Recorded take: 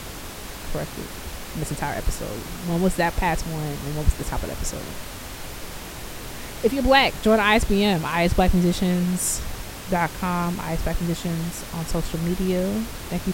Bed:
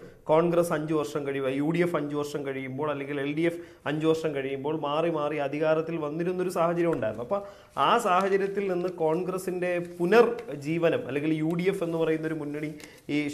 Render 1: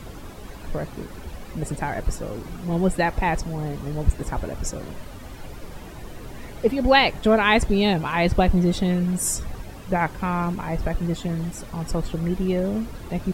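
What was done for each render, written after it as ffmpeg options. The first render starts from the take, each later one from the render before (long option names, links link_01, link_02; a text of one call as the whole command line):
ffmpeg -i in.wav -af "afftdn=noise_reduction=12:noise_floor=-36" out.wav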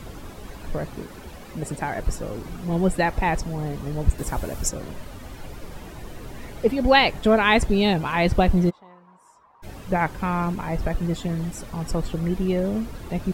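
ffmpeg -i in.wav -filter_complex "[0:a]asettb=1/sr,asplit=3[link_01][link_02][link_03];[link_01]atrim=end=1.004[link_04];[link_02]atrim=start=1:end=2,asetpts=PTS-STARTPTS,afade=type=in:duration=0.004:curve=qsin,afade=type=out:start_time=0.996:duration=0.004:curve=qsin,lowshelf=frequency=84:gain=-9[link_05];[link_03]atrim=start=1.996[link_06];[link_04][link_05]acrossfade=duration=0.004:curve1=hsin:curve2=qsin[link_07];[link_07][link_06]acrossfade=duration=0.004:curve1=qsin:curve2=hsin,asettb=1/sr,asplit=3[link_08][link_09][link_10];[link_08]atrim=end=4.184[link_11];[link_09]atrim=start=4.18:end=4.69,asetpts=PTS-STARTPTS,afade=type=in:duration=0.004:curve=qsin,afade=type=out:start_time=0.506:duration=0.004:curve=qsin,highshelf=frequency=6200:gain=11.5[link_12];[link_10]atrim=start=4.686[link_13];[link_11][link_12]acrossfade=duration=0.004:curve1=hsin:curve2=qsin[link_14];[link_14][link_13]acrossfade=duration=0.004:curve1=qsin:curve2=hsin,asplit=3[link_15][link_16][link_17];[link_15]afade=type=out:start_time=8.69:duration=0.02[link_18];[link_16]bandpass=frequency=1000:width_type=q:width=8.6,afade=type=in:start_time=8.69:duration=0.02,afade=type=out:start_time=9.62:duration=0.02[link_19];[link_17]afade=type=in:start_time=9.62:duration=0.02[link_20];[link_18][link_19][link_20]amix=inputs=3:normalize=0" out.wav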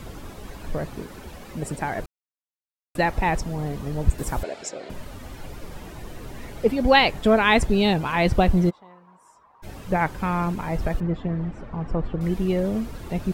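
ffmpeg -i in.wav -filter_complex "[0:a]asettb=1/sr,asplit=3[link_01][link_02][link_03];[link_01]atrim=end=4.434[link_04];[link_02]atrim=start=4.43:end=4.9,asetpts=PTS-STARTPTS,afade=type=in:duration=0.004:curve=qsin,afade=type=out:start_time=0.466:duration=0.004:curve=qsin,highpass=400,equalizer=frequency=400:width_type=q:width=4:gain=3,equalizer=frequency=680:width_type=q:width=4:gain=5,equalizer=frequency=1100:width_type=q:width=4:gain=-7,equalizer=frequency=2200:width_type=q:width=4:gain=4,equalizer=frequency=4100:width_type=q:width=4:gain=4,equalizer=frequency=6000:width_type=q:width=4:gain=-9,lowpass=frequency=6600:width=0.5412,lowpass=frequency=6600:width=1.3066[link_05];[link_03]atrim=start=4.896[link_06];[link_04][link_05]acrossfade=duration=0.004:curve1=hsin:curve2=qsin[link_07];[link_07][link_06]acrossfade=duration=0.004:curve1=qsin:curve2=hsin,asettb=1/sr,asplit=3[link_08][link_09][link_10];[link_08]atrim=end=11.004[link_11];[link_09]atrim=start=11:end=12.21,asetpts=PTS-STARTPTS,afade=type=in:duration=0.004:curve=qsin,afade=type=out:start_time=1.206:duration=0.004:curve=qsin,lowpass=1800[link_12];[link_10]atrim=start=12.206[link_13];[link_11][link_12]acrossfade=duration=0.004:curve1=hsin:curve2=qsin[link_14];[link_14][link_13]acrossfade=duration=0.004:curve1=qsin:curve2=hsin,asplit=3[link_15][link_16][link_17];[link_15]atrim=end=2.06,asetpts=PTS-STARTPTS,afade=type=out:start_time=2.056:duration=0.004:curve=hsin[link_18];[link_16]atrim=start=2.06:end=2.95,asetpts=PTS-STARTPTS,volume=0[link_19];[link_17]atrim=start=2.95,asetpts=PTS-STARTPTS,afade=type=in:duration=0.004:curve=hsin[link_20];[link_18][link_19][link_20]concat=n=3:v=0:a=1" out.wav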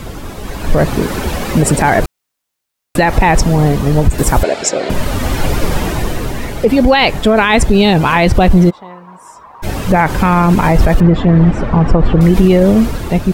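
ffmpeg -i in.wav -af "dynaudnorm=framelen=220:gausssize=7:maxgain=12dB,alimiter=level_in=11.5dB:limit=-1dB:release=50:level=0:latency=1" out.wav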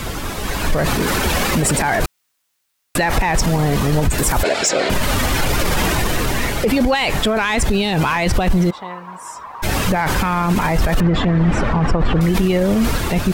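ffmpeg -i in.wav -filter_complex "[0:a]acrossover=split=970[link_01][link_02];[link_02]acontrast=64[link_03];[link_01][link_03]amix=inputs=2:normalize=0,alimiter=limit=-8.5dB:level=0:latency=1:release=21" out.wav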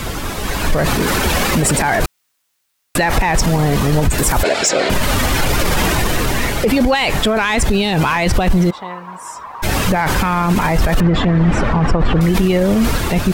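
ffmpeg -i in.wav -af "volume=2dB" out.wav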